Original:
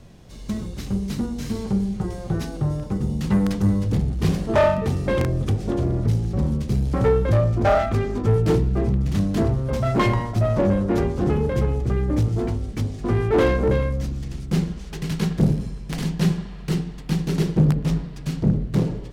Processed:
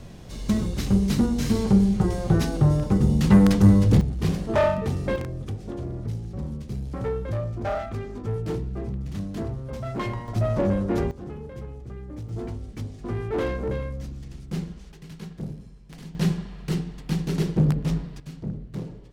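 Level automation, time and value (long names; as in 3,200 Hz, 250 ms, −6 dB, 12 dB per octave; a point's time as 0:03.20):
+4.5 dB
from 0:04.01 −3.5 dB
from 0:05.16 −10 dB
from 0:10.28 −3.5 dB
from 0:11.11 −16 dB
from 0:12.29 −8.5 dB
from 0:14.92 −15.5 dB
from 0:16.15 −3 dB
from 0:18.20 −12.5 dB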